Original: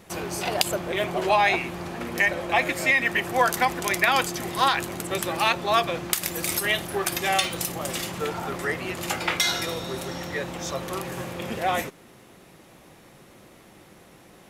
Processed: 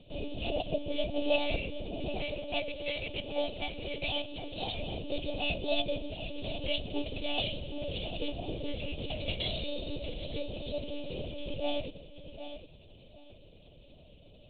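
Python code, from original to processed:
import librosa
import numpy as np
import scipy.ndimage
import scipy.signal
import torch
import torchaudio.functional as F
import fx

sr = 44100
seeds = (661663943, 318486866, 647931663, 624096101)

y = fx.cvsd(x, sr, bps=32000)
y = scipy.signal.sosfilt(scipy.signal.ellip(3, 1.0, 40, [680.0, 2900.0], 'bandstop', fs=sr, output='sos'), y)
y = fx.peak_eq(y, sr, hz=2000.0, db=11.5, octaves=0.67)
y = fx.echo_feedback(y, sr, ms=765, feedback_pct=22, wet_db=-11)
y = fx.lpc_monotone(y, sr, seeds[0], pitch_hz=290.0, order=10)
y = fx.low_shelf(y, sr, hz=440.0, db=-5.0, at=(2.24, 4.75))
y = F.gain(torch.from_numpy(y), -3.0).numpy()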